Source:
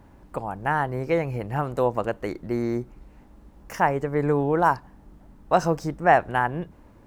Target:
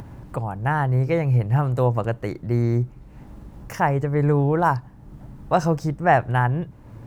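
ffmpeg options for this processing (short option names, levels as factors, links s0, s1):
-af "equalizer=f=120:w=2.1:g=14.5,acompressor=mode=upward:threshold=0.0282:ratio=2.5"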